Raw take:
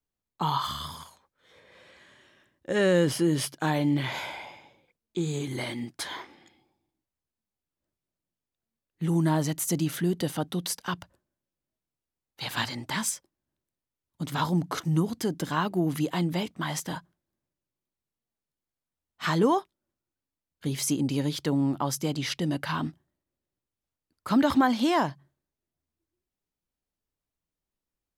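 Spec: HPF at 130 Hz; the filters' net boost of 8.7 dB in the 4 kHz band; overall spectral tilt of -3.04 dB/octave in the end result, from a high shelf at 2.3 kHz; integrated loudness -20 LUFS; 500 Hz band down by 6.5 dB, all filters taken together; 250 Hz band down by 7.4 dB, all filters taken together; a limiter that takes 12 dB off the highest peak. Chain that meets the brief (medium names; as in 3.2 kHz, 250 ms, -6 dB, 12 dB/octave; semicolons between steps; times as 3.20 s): high-pass 130 Hz; peaking EQ 250 Hz -8 dB; peaking EQ 500 Hz -6 dB; treble shelf 2.3 kHz +4 dB; peaking EQ 4 kHz +7.5 dB; trim +11.5 dB; peak limiter -9 dBFS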